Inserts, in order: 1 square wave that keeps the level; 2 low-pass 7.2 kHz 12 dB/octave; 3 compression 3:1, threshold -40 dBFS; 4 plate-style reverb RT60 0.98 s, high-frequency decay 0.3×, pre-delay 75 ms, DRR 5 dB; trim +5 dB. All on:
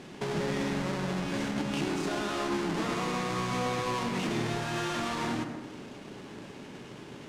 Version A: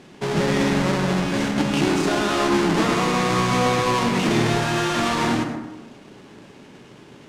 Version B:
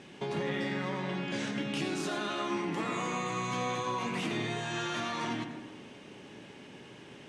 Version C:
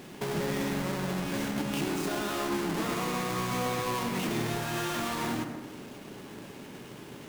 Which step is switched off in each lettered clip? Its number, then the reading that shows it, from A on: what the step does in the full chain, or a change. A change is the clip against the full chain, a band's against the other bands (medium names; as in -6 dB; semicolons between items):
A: 3, mean gain reduction 8.0 dB; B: 1, distortion -5 dB; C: 2, 8 kHz band +3.5 dB